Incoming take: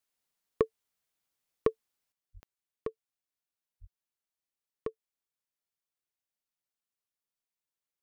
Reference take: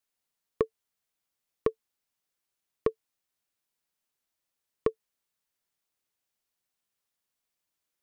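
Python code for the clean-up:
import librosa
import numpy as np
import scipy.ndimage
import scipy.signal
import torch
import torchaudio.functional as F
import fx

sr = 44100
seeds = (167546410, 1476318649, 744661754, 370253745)

y = fx.fix_declick_ar(x, sr, threshold=10.0)
y = fx.highpass(y, sr, hz=140.0, slope=24, at=(2.33, 2.45), fade=0.02)
y = fx.highpass(y, sr, hz=140.0, slope=24, at=(3.8, 3.92), fade=0.02)
y = fx.fix_level(y, sr, at_s=2.12, step_db=9.5)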